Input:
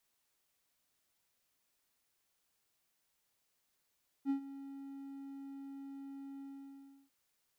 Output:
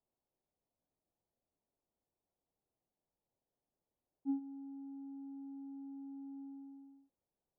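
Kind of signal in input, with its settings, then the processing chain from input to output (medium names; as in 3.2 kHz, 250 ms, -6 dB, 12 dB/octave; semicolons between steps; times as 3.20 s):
ADSR triangle 275 Hz, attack 49 ms, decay 101 ms, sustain -16 dB, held 2.16 s, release 688 ms -27 dBFS
inverse Chebyshev low-pass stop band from 2.7 kHz, stop band 60 dB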